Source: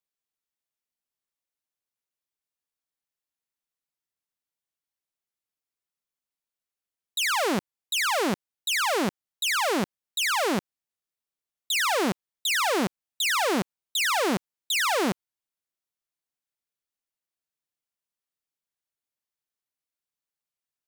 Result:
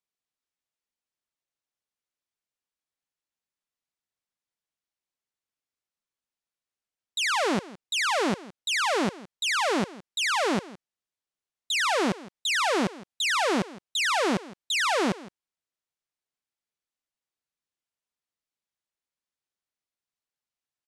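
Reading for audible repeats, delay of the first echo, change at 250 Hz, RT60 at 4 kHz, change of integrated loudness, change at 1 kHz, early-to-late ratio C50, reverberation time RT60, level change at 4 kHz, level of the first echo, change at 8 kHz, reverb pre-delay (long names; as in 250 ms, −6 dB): 1, 164 ms, 0.0 dB, no reverb audible, −0.5 dB, 0.0 dB, no reverb audible, no reverb audible, −0.5 dB, −18.5 dB, −2.5 dB, no reverb audible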